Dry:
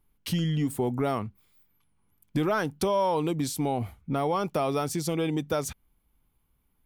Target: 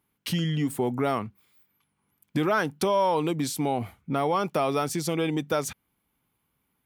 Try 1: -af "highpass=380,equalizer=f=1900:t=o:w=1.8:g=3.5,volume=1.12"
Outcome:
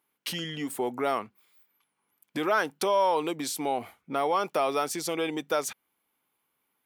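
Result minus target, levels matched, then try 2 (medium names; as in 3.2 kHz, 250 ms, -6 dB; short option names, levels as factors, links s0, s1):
125 Hz band -12.5 dB
-af "highpass=120,equalizer=f=1900:t=o:w=1.8:g=3.5,volume=1.12"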